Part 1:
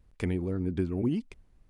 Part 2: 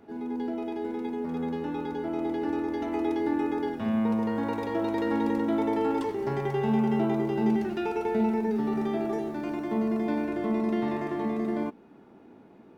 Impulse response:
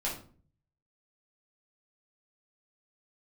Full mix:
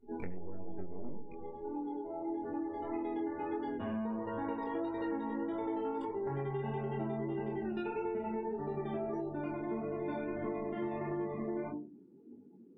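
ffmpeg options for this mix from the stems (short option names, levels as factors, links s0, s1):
-filter_complex "[0:a]aeval=exprs='max(val(0),0)':c=same,volume=1,asplit=3[s0][s1][s2];[s1]volume=0.211[s3];[1:a]volume=0.944,asplit=2[s4][s5];[s5]volume=0.282[s6];[s2]apad=whole_len=563504[s7];[s4][s7]sidechaincompress=threshold=0.00316:ratio=12:attack=10:release=1340[s8];[2:a]atrim=start_sample=2205[s9];[s3][s6]amix=inputs=2:normalize=0[s10];[s10][s9]afir=irnorm=-1:irlink=0[s11];[s0][s8][s11]amix=inputs=3:normalize=0,afftdn=nr=28:nf=-42,flanger=delay=20:depth=2.6:speed=1.6,acompressor=threshold=0.02:ratio=6"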